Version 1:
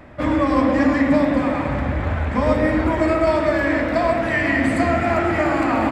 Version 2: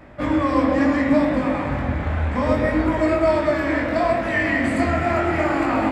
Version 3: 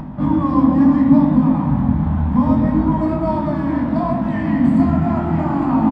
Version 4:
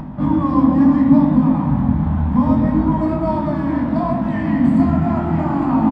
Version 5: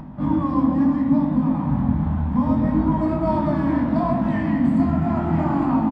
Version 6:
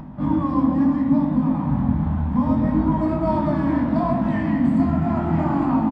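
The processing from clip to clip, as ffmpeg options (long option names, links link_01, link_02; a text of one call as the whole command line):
ffmpeg -i in.wav -af "flanger=delay=19:depth=6.8:speed=0.68,volume=1.5dB" out.wav
ffmpeg -i in.wav -af "firequalizer=gain_entry='entry(110,0);entry(160,14);entry(240,9);entry(350,-6);entry(530,-11);entry(930,4);entry(1300,-7);entry(2200,-14);entry(3200,-5);entry(7800,-9)':delay=0.05:min_phase=1,acompressor=mode=upward:threshold=-24dB:ratio=2.5,highshelf=frequency=2300:gain=-9,volume=2.5dB" out.wav
ffmpeg -i in.wav -af anull out.wav
ffmpeg -i in.wav -af "dynaudnorm=framelen=160:gausssize=3:maxgain=8dB,volume=-7dB" out.wav
ffmpeg -i in.wav -af "aresample=22050,aresample=44100" out.wav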